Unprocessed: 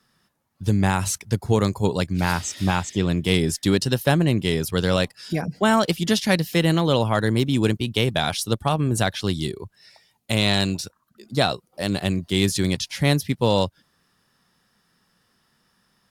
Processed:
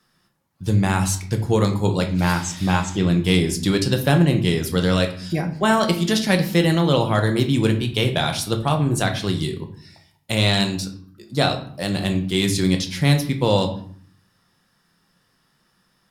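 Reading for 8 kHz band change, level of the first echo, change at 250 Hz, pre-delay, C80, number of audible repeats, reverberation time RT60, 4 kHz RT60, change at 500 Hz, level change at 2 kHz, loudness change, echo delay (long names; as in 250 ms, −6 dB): +0.5 dB, no echo audible, +2.0 dB, 6 ms, 14.5 dB, no echo audible, 0.60 s, 0.40 s, +1.0 dB, +1.5 dB, +2.0 dB, no echo audible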